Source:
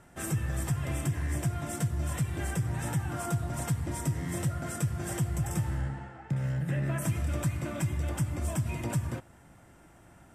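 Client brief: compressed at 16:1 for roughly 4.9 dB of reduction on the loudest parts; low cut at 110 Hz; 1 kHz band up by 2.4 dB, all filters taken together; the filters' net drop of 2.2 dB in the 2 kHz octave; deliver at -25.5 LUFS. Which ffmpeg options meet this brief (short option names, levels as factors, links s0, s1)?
-af "highpass=110,equalizer=f=1000:t=o:g=4.5,equalizer=f=2000:t=o:g=-4.5,acompressor=threshold=0.0316:ratio=16,volume=3.55"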